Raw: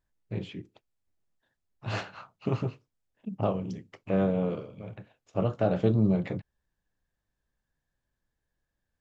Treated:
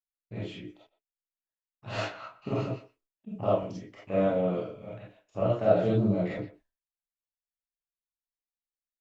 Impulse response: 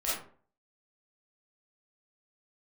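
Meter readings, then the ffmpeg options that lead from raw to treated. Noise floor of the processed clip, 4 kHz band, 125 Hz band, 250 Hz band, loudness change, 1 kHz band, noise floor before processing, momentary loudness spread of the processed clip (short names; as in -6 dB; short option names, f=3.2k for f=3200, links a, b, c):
under -85 dBFS, +1.5 dB, -2.5 dB, -2.0 dB, +0.5 dB, +2.5 dB, -84 dBFS, 20 LU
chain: -filter_complex "[0:a]agate=range=-33dB:threshold=-57dB:ratio=3:detection=peak,asplit=2[a][b];[b]adelay=120,highpass=300,lowpass=3.4k,asoftclip=type=hard:threshold=-20.5dB,volume=-17dB[c];[a][c]amix=inputs=2:normalize=0[d];[1:a]atrim=start_sample=2205,atrim=end_sample=4410[e];[d][e]afir=irnorm=-1:irlink=0,volume=-4.5dB"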